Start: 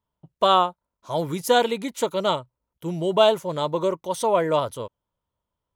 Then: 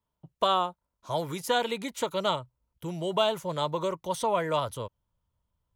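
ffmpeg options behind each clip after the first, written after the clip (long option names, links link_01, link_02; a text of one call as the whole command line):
ffmpeg -i in.wav -filter_complex "[0:a]asubboost=boost=3:cutoff=190,acrossover=split=390|800|4000[link_01][link_02][link_03][link_04];[link_01]acompressor=threshold=-36dB:ratio=4[link_05];[link_02]acompressor=threshold=-29dB:ratio=4[link_06];[link_03]acompressor=threshold=-24dB:ratio=4[link_07];[link_04]acompressor=threshold=-37dB:ratio=4[link_08];[link_05][link_06][link_07][link_08]amix=inputs=4:normalize=0,volume=-1.5dB" out.wav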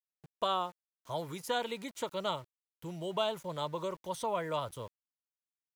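ffmpeg -i in.wav -af "aeval=exprs='val(0)*gte(abs(val(0)),0.00473)':channel_layout=same,volume=-7dB" out.wav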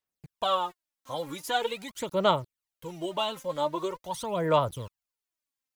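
ffmpeg -i in.wav -af "aphaser=in_gain=1:out_gain=1:delay=3.8:decay=0.68:speed=0.44:type=sinusoidal,volume=2.5dB" out.wav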